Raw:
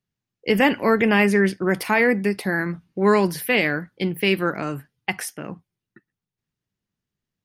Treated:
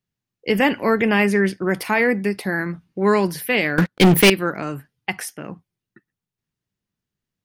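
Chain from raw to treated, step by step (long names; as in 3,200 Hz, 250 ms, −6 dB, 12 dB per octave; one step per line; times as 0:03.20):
0:03.78–0:04.30: leveller curve on the samples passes 5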